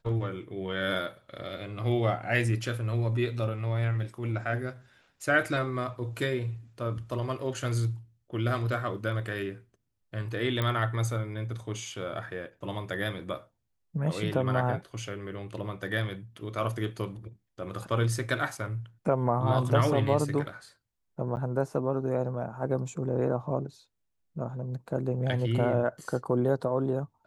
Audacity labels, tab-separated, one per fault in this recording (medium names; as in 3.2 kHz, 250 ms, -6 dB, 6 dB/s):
10.620000	10.620000	pop -16 dBFS
21.360000	21.370000	dropout 9.7 ms